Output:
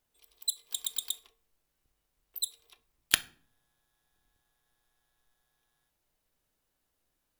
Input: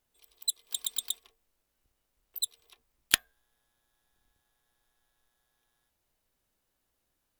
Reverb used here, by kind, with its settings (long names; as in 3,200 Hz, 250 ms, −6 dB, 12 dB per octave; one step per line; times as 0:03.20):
rectangular room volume 540 cubic metres, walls furnished, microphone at 0.43 metres
level −1 dB